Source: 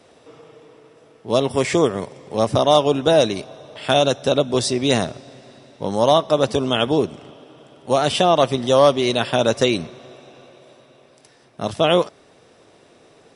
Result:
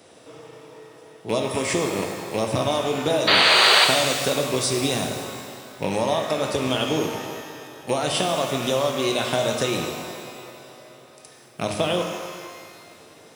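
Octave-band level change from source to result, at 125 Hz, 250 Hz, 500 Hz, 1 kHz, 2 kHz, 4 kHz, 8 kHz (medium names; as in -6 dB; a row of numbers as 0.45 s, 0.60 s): -4.5 dB, -5.0 dB, -6.0 dB, -3.5 dB, +5.0 dB, +2.5 dB, +3.0 dB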